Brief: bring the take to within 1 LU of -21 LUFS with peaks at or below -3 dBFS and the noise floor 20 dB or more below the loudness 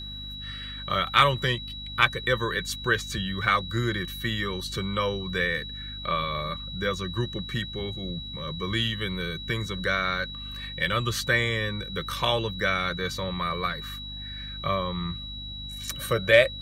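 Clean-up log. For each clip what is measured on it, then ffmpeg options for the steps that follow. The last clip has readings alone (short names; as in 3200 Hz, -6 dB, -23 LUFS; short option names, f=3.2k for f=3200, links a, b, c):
hum 50 Hz; harmonics up to 250 Hz; hum level -39 dBFS; steady tone 3900 Hz; tone level -37 dBFS; loudness -27.5 LUFS; peak -5.0 dBFS; loudness target -21.0 LUFS
-> -af "bandreject=f=50:t=h:w=6,bandreject=f=100:t=h:w=6,bandreject=f=150:t=h:w=6,bandreject=f=200:t=h:w=6,bandreject=f=250:t=h:w=6"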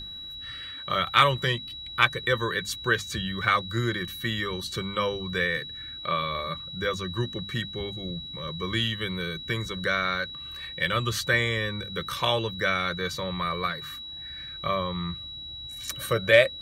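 hum none; steady tone 3900 Hz; tone level -37 dBFS
-> -af "bandreject=f=3.9k:w=30"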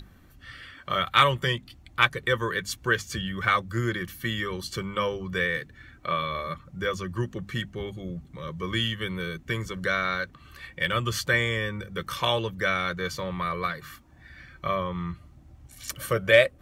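steady tone none; loudness -27.5 LUFS; peak -5.0 dBFS; loudness target -21.0 LUFS
-> -af "volume=6.5dB,alimiter=limit=-3dB:level=0:latency=1"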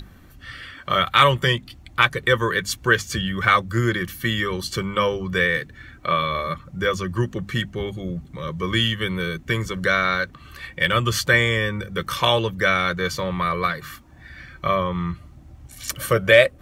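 loudness -21.5 LUFS; peak -3.0 dBFS; noise floor -47 dBFS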